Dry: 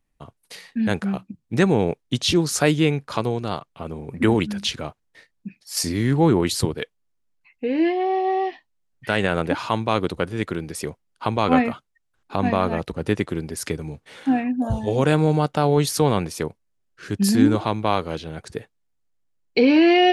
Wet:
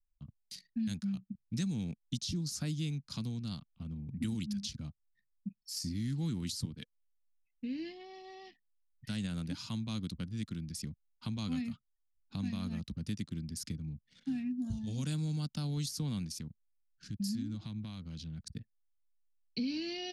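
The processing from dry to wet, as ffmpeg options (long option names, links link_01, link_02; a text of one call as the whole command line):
ffmpeg -i in.wav -filter_complex "[0:a]asettb=1/sr,asplit=3[link_01][link_02][link_03];[link_01]atrim=end=16.334[link_04];[link_02]atrim=start=16.33:end=18.47,asetpts=PTS-STARTPTS,afade=type=in:duration=0.004:curve=qsin,afade=type=out:start_time=2.136:duration=0.004:curve=qsin,acompressor=threshold=-30dB:ratio=2:attack=3.2:release=140:knee=1:detection=peak[link_05];[link_03]atrim=start=18.466[link_06];[link_04][link_05]acrossfade=duration=0.004:curve1=hsin:curve2=qsin[link_07];[link_07][link_06]acrossfade=duration=0.004:curve1=qsin:curve2=hsin,anlmdn=0.398,firequalizer=gain_entry='entry(220,0);entry(390,-26);entry(560,-26);entry(830,-26);entry(1300,-20);entry(4900,3);entry(8600,-3)':delay=0.05:min_phase=1,acrossover=split=240|1400|3100[link_08][link_09][link_10][link_11];[link_08]acompressor=threshold=-34dB:ratio=4[link_12];[link_09]acompressor=threshold=-35dB:ratio=4[link_13];[link_10]acompressor=threshold=-51dB:ratio=4[link_14];[link_11]acompressor=threshold=-37dB:ratio=4[link_15];[link_12][link_13][link_14][link_15]amix=inputs=4:normalize=0,volume=-4.5dB" out.wav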